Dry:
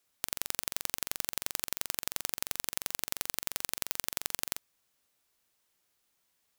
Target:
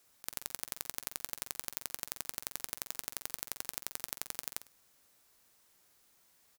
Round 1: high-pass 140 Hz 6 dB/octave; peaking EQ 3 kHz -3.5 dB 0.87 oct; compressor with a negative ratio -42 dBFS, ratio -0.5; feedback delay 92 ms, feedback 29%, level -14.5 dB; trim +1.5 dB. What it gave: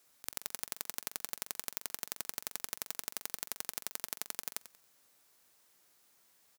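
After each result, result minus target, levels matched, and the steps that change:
echo 41 ms late; 125 Hz band -4.5 dB
change: feedback delay 51 ms, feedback 29%, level -14.5 dB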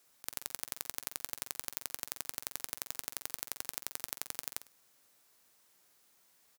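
125 Hz band -3.5 dB
remove: high-pass 140 Hz 6 dB/octave

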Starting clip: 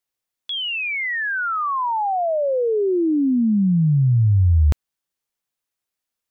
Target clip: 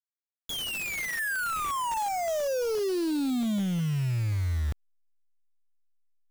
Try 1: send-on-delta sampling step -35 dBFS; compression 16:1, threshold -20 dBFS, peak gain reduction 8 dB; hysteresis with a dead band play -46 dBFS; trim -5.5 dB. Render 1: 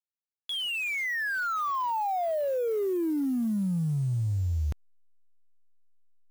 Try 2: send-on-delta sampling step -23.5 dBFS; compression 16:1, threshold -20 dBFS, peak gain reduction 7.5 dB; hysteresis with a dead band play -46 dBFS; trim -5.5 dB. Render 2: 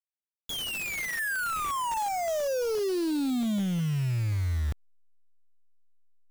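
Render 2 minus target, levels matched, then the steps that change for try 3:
hysteresis with a dead band: distortion +8 dB
change: hysteresis with a dead band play -54.5 dBFS

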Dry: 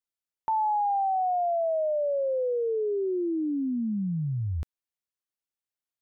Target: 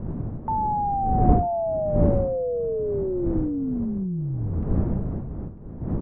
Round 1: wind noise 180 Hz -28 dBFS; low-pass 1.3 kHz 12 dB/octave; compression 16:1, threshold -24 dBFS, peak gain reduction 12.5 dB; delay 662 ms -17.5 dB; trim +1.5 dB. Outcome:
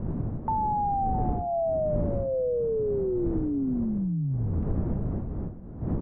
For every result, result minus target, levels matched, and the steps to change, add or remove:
compression: peak gain reduction +12.5 dB; echo 284 ms early
remove: compression 16:1, threshold -24 dBFS, peak gain reduction 12.5 dB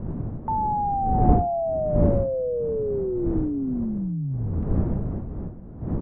echo 284 ms early
change: delay 946 ms -17.5 dB

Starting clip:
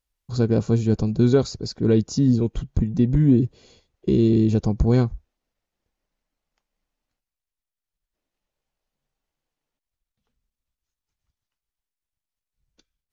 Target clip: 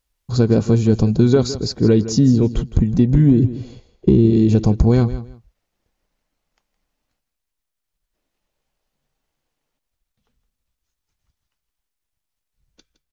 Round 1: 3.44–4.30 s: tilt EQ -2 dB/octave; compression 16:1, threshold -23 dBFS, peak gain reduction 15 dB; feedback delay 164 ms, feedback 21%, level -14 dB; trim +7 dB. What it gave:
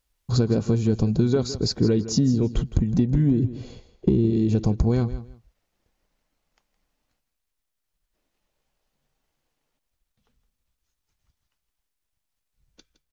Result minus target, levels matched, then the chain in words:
compression: peak gain reduction +7.5 dB
3.44–4.30 s: tilt EQ -2 dB/octave; compression 16:1, threshold -15 dBFS, peak gain reduction 7.5 dB; feedback delay 164 ms, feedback 21%, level -14 dB; trim +7 dB

